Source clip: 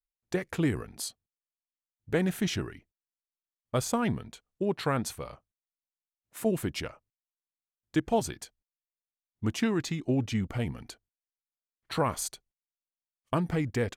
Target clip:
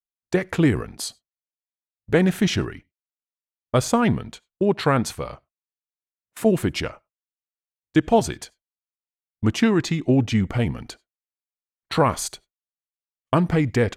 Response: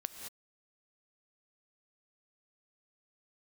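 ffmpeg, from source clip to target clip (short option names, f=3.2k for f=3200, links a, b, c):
-filter_complex "[0:a]agate=range=-23dB:threshold=-48dB:ratio=16:detection=peak,highshelf=f=8.8k:g=-9.5,asplit=2[a][b];[1:a]atrim=start_sample=2205,afade=t=out:st=0.15:d=0.01,atrim=end_sample=7056[c];[b][c]afir=irnorm=-1:irlink=0,volume=-8.5dB[d];[a][d]amix=inputs=2:normalize=0,volume=7dB"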